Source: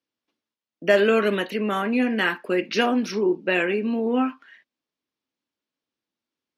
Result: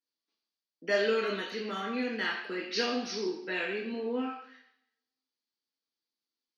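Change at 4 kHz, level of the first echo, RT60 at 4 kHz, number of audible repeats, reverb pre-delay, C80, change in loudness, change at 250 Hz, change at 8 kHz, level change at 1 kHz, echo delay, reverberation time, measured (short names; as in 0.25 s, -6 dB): -4.5 dB, none, 0.70 s, none, 3 ms, 9.5 dB, -9.5 dB, -12.5 dB, -3.5 dB, -10.5 dB, none, 0.70 s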